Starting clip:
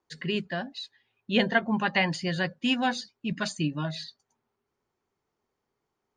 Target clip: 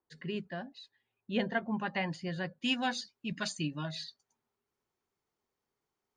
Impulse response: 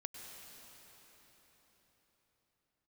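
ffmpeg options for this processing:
-af "asetnsamples=nb_out_samples=441:pad=0,asendcmd='2.61 highshelf g 5',highshelf=frequency=2100:gain=-7.5,volume=-7dB"

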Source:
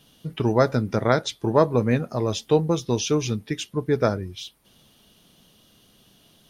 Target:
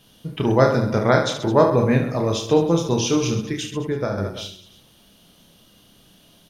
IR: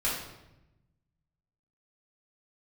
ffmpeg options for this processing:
-filter_complex "[0:a]asplit=2[link_01][link_02];[link_02]aecho=0:1:30|72|130.8|213.1|328.4:0.631|0.398|0.251|0.158|0.1[link_03];[link_01][link_03]amix=inputs=2:normalize=0,asettb=1/sr,asplit=3[link_04][link_05][link_06];[link_04]atrim=end=3.494[link_07];[link_05]atrim=start=3.49:end=4.18,asetpts=PTS-STARTPTS,afade=type=in:duration=0.004:curve=qsin,afade=type=out:start_time=0.686:duration=0.004:curve=qsin,acompressor=threshold=-22dB:ratio=6[link_08];[link_06]atrim=start=4.176[link_09];[link_07][link_08]acrossfade=duration=0.004:curve1=hsin:curve2=qsin[link_10];[link_10][link_09]acrossfade=duration=0.004:curve1=qsin:curve2=hsin,asplit=2[link_11][link_12];[1:a]atrim=start_sample=2205,afade=type=out:start_time=0.33:duration=0.01,atrim=end_sample=14994,lowpass=2700[link_13];[link_12][link_13]afir=irnorm=-1:irlink=0,volume=-19.5dB[link_14];[link_11][link_14]amix=inputs=2:normalize=0,volume=1dB"

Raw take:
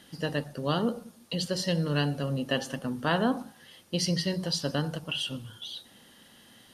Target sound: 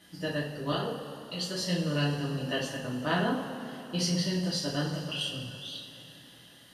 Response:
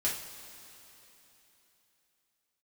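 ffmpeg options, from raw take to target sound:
-filter_complex "[0:a]asettb=1/sr,asplit=3[link_01][link_02][link_03];[link_01]atrim=end=0.724[link_04];[link_02]atrim=start=0.72:end=1.61,asetpts=PTS-STARTPTS,afade=type=in:duration=0.004:curve=qsin,afade=type=out:start_time=0.886:duration=0.004:curve=qsin,acrossover=split=330|3000[link_05][link_06][link_07];[link_05]acompressor=threshold=-39dB:ratio=6[link_08];[link_08][link_06][link_07]amix=inputs=3:normalize=0[link_09];[link_03]atrim=start=1.606[link_10];[link_04][link_09]acrossfade=duration=0.004:curve1=hsin:curve2=qsin[link_11];[link_11][link_10]acrossfade=duration=0.004:curve1=qsin:curve2=hsin[link_12];[1:a]atrim=start_sample=2205[link_13];[link_12][link_13]afir=irnorm=-1:irlink=0,volume=-6.5dB"

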